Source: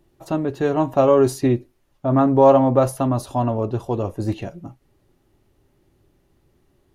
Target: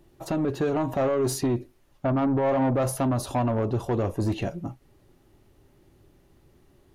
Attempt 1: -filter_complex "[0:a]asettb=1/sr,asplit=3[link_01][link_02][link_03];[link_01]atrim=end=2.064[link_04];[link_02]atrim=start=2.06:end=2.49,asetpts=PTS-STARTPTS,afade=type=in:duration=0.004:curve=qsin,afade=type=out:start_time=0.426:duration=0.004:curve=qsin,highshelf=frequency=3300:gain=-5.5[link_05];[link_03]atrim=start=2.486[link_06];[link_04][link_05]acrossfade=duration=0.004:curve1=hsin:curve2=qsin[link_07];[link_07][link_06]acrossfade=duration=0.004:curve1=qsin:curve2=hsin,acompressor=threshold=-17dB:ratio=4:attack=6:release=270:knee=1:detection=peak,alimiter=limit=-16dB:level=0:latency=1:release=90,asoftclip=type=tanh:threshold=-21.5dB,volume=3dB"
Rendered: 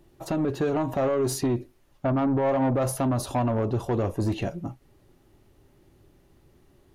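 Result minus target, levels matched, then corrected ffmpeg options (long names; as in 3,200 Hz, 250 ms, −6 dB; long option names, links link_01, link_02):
downward compressor: peak gain reduction +8.5 dB
-filter_complex "[0:a]asettb=1/sr,asplit=3[link_01][link_02][link_03];[link_01]atrim=end=2.064[link_04];[link_02]atrim=start=2.06:end=2.49,asetpts=PTS-STARTPTS,afade=type=in:duration=0.004:curve=qsin,afade=type=out:start_time=0.426:duration=0.004:curve=qsin,highshelf=frequency=3300:gain=-5.5[link_05];[link_03]atrim=start=2.486[link_06];[link_04][link_05]acrossfade=duration=0.004:curve1=hsin:curve2=qsin[link_07];[link_07][link_06]acrossfade=duration=0.004:curve1=qsin:curve2=hsin,alimiter=limit=-16dB:level=0:latency=1:release=90,asoftclip=type=tanh:threshold=-21.5dB,volume=3dB"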